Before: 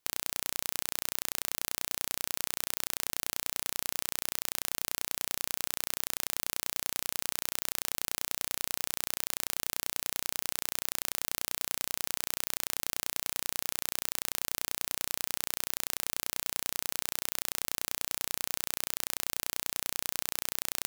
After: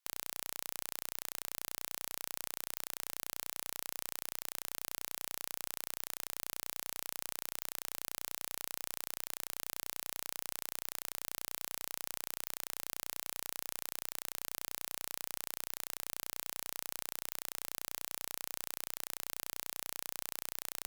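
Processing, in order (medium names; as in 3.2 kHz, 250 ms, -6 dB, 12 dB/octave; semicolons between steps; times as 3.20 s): high-pass 890 Hz 12 dB/octave; Chebyshev shaper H 4 -14 dB, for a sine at -5 dBFS; trim -5.5 dB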